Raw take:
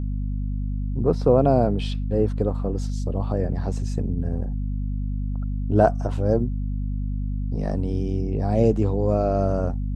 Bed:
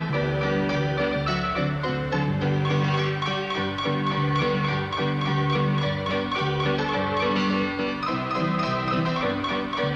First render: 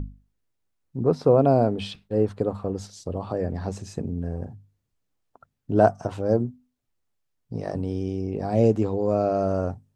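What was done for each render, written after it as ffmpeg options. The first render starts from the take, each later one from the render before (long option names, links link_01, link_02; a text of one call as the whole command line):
ffmpeg -i in.wav -af "bandreject=frequency=50:width_type=h:width=6,bandreject=frequency=100:width_type=h:width=6,bandreject=frequency=150:width_type=h:width=6,bandreject=frequency=200:width_type=h:width=6,bandreject=frequency=250:width_type=h:width=6" out.wav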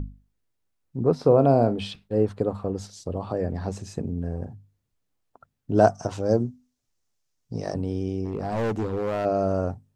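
ffmpeg -i in.wav -filter_complex "[0:a]asettb=1/sr,asplit=3[link_01][link_02][link_03];[link_01]atrim=end=1.144[link_04];[link_02]atrim=start=1.14:end=1.78,asetpts=PTS-STARTPTS,afade=type=in:duration=0.004:curve=qsin,afade=type=out:start_time=0.636:duration=0.004:curve=qsin,asplit=2[link_05][link_06];[link_06]adelay=43,volume=-13dB[link_07];[link_05][link_07]amix=inputs=2:normalize=0,atrim=end_sample=28224[link_08];[link_03]atrim=start=1.776[link_09];[link_04][link_08]acrossfade=duration=0.004:curve1=hsin:curve2=qsin[link_10];[link_10][link_09]acrossfade=duration=0.004:curve1=qsin:curve2=hsin,asettb=1/sr,asplit=3[link_11][link_12][link_13];[link_11]atrim=end=5.744[link_14];[link_12]atrim=start=5.74:end=7.74,asetpts=PTS-STARTPTS,afade=type=in:duration=0.004:curve=qsin,afade=type=out:start_time=1.996:duration=0.004:curve=qsin,equalizer=frequency=6000:width=1.3:gain=10.5[link_15];[link_13]atrim=start=7.736[link_16];[link_14][link_15]acrossfade=duration=0.004:curve1=hsin:curve2=qsin[link_17];[link_17][link_16]acrossfade=duration=0.004:curve1=qsin:curve2=hsin,asplit=3[link_18][link_19][link_20];[link_18]afade=type=out:start_time=8.24:duration=0.02[link_21];[link_19]asoftclip=type=hard:threshold=-23dB,afade=type=in:start_time=8.24:duration=0.02,afade=type=out:start_time=9.24:duration=0.02[link_22];[link_20]afade=type=in:start_time=9.24:duration=0.02[link_23];[link_21][link_22][link_23]amix=inputs=3:normalize=0" out.wav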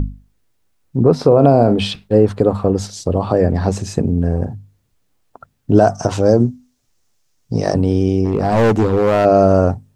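ffmpeg -i in.wav -af "alimiter=level_in=13dB:limit=-1dB:release=50:level=0:latency=1" out.wav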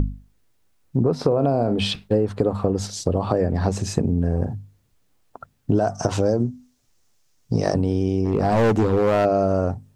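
ffmpeg -i in.wav -af "acompressor=threshold=-16dB:ratio=6" out.wav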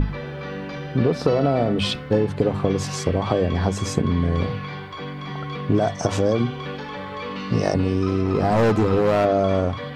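ffmpeg -i in.wav -i bed.wav -filter_complex "[1:a]volume=-7.5dB[link_01];[0:a][link_01]amix=inputs=2:normalize=0" out.wav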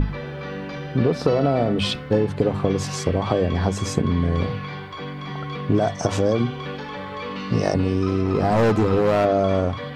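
ffmpeg -i in.wav -af anull out.wav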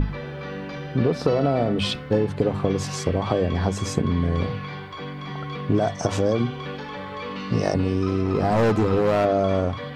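ffmpeg -i in.wav -af "volume=-1.5dB" out.wav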